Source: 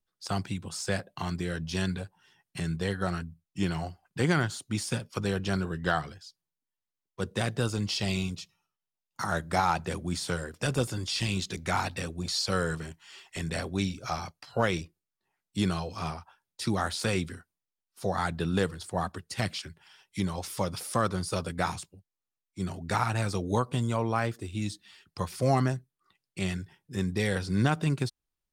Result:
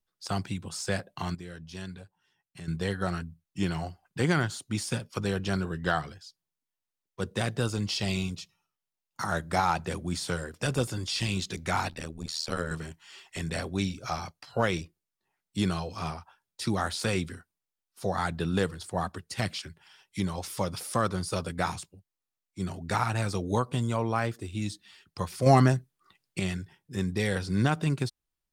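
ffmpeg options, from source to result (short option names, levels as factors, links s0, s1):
-filter_complex "[0:a]asettb=1/sr,asplit=3[s0][s1][s2];[s0]atrim=end=11.904[s3];[s1]atrim=start=11.9:end=12.71,asetpts=PTS-STARTPTS,afade=t=in:d=0.004:c=qsin,afade=t=out:st=0.806:d=0.004:c=qsin,tremolo=f=79:d=0.974[s4];[s2]atrim=start=12.706[s5];[s3][s4]acrossfade=d=0.004:c1=hsin:c2=qsin[s6];[s6][s5]acrossfade=d=0.004:c1=qsin:c2=hsin,asettb=1/sr,asplit=3[s7][s8][s9];[s7]atrim=end=25.464[s10];[s8]atrim=start=25.46:end=26.4,asetpts=PTS-STARTPTS,afade=t=in:d=0.004:c=qsin,afade=t=out:st=0.936:d=0.004:c=qsin,acontrast=47[s11];[s9]atrim=start=26.396[s12];[s10][s11]acrossfade=d=0.004:c1=hsin:c2=qsin[s13];[s13][s12]acrossfade=d=0.004:c1=qsin:c2=hsin,asplit=3[s14][s15][s16];[s14]atrim=end=1.352[s17];[s15]atrim=start=1.348:end=2.682,asetpts=PTS-STARTPTS,volume=0.316[s18];[s16]atrim=start=2.678[s19];[s17][s18]acrossfade=d=0.004:c1=hsin:c2=hsin[s20];[s20][s19]acrossfade=d=0.004:c1=hsin:c2=hsin"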